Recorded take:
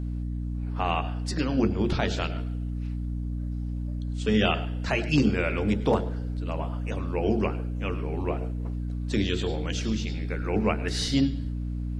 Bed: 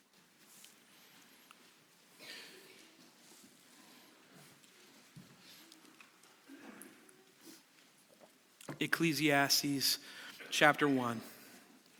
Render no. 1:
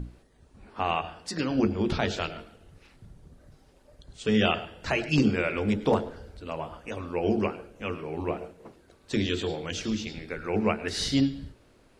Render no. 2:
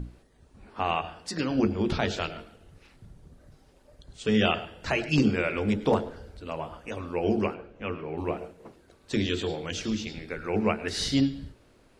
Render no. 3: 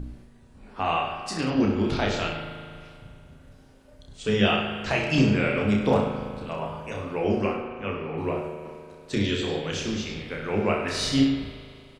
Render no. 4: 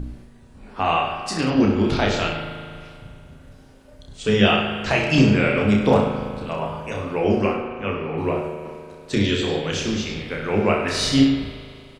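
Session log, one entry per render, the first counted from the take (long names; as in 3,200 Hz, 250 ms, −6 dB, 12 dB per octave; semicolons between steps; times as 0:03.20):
mains-hum notches 60/120/180/240/300 Hz
0:07.54–0:08.18: low-pass filter 3,200 Hz
on a send: reverse bouncing-ball delay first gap 30 ms, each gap 1.1×, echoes 5; on the sum: spring reverb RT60 2.3 s, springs 38 ms, chirp 65 ms, DRR 5 dB
level +5 dB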